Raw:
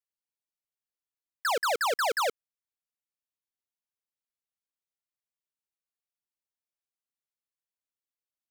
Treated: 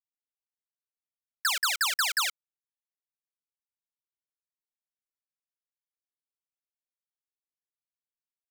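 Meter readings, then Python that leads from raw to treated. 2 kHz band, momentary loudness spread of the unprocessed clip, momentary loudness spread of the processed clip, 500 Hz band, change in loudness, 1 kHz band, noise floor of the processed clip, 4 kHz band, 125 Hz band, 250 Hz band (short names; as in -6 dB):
+2.5 dB, 5 LU, 6 LU, -23.5 dB, +1.5 dB, -5.5 dB, under -85 dBFS, +6.5 dB, n/a, under -40 dB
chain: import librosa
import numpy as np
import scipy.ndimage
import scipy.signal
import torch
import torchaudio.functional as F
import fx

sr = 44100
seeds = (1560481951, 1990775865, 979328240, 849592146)

y = fx.law_mismatch(x, sr, coded='mu')
y = scipy.signal.sosfilt(scipy.signal.bessel(4, 2100.0, 'highpass', norm='mag', fs=sr, output='sos'), y)
y = F.gain(torch.from_numpy(y), 6.5).numpy()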